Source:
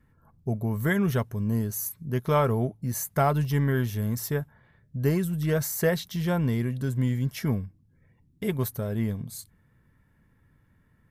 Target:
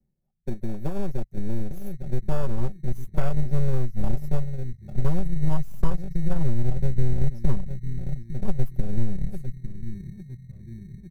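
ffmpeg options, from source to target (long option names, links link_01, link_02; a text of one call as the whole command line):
ffmpeg -i in.wav -filter_complex "[0:a]asuperstop=centerf=2000:order=20:qfactor=0.53,equalizer=frequency=7300:width_type=o:width=1.8:gain=-3.5,asplit=2[link_01][link_02];[link_02]adelay=851,lowpass=frequency=1700:poles=1,volume=-11dB,asplit=2[link_03][link_04];[link_04]adelay=851,lowpass=frequency=1700:poles=1,volume=0.49,asplit=2[link_05][link_06];[link_06]adelay=851,lowpass=frequency=1700:poles=1,volume=0.49,asplit=2[link_07][link_08];[link_08]adelay=851,lowpass=frequency=1700:poles=1,volume=0.49,asplit=2[link_09][link_10];[link_10]adelay=851,lowpass=frequency=1700:poles=1,volume=0.49[link_11];[link_01][link_03][link_05][link_07][link_09][link_11]amix=inputs=6:normalize=0,areverse,acompressor=mode=upward:threshold=-28dB:ratio=2.5,areverse,aeval=exprs='0.251*(cos(1*acos(clip(val(0)/0.251,-1,1)))-cos(1*PI/2))+0.0891*(cos(4*acos(clip(val(0)/0.251,-1,1)))-cos(4*PI/2))+0.0178*(cos(7*acos(clip(val(0)/0.251,-1,1)))-cos(7*PI/2))':channel_layout=same,afwtdn=0.0282,aecho=1:1:5.3:0.8,acrossover=split=150|880[link_12][link_13][link_14];[link_12]acompressor=threshold=-26dB:ratio=4[link_15];[link_13]acompressor=threshold=-29dB:ratio=4[link_16];[link_14]acompressor=threshold=-34dB:ratio=4[link_17];[link_15][link_16][link_17]amix=inputs=3:normalize=0,asubboost=boost=8:cutoff=100,asplit=2[link_18][link_19];[link_19]acrusher=samples=22:mix=1:aa=0.000001,volume=-10dB[link_20];[link_18][link_20]amix=inputs=2:normalize=0,volume=-5dB" out.wav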